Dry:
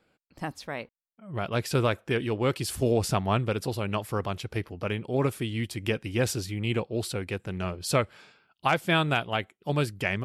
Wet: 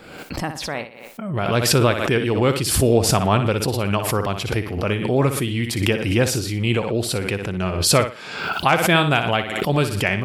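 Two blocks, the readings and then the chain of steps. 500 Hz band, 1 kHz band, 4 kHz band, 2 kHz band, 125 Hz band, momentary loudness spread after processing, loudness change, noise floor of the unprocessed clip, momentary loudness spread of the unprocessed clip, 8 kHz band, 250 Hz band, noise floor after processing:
+8.5 dB, +8.5 dB, +10.5 dB, +8.5 dB, +8.5 dB, 11 LU, +9.0 dB, -78 dBFS, 10 LU, +13.5 dB, +8.5 dB, -39 dBFS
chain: thinning echo 60 ms, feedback 26%, high-pass 150 Hz, level -9 dB; swell ahead of each attack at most 50 dB/s; trim +7 dB

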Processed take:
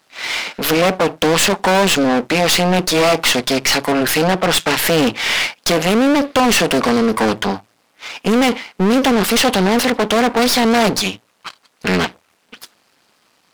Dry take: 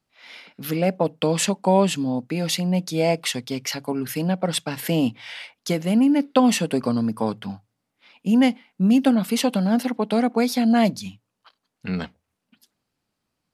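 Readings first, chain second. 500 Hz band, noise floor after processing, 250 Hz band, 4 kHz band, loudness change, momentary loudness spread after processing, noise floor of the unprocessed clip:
+8.5 dB, -60 dBFS, +3.0 dB, +13.0 dB, +6.5 dB, 8 LU, -79 dBFS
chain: half-wave rectifier; overdrive pedal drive 35 dB, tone 5.7 kHz, clips at -4.5 dBFS

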